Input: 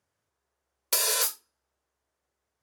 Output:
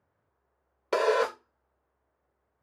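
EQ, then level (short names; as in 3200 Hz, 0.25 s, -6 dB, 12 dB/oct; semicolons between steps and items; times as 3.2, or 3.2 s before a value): LPF 1400 Hz 12 dB/oct; dynamic EQ 360 Hz, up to +6 dB, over -50 dBFS, Q 0.75; +7.5 dB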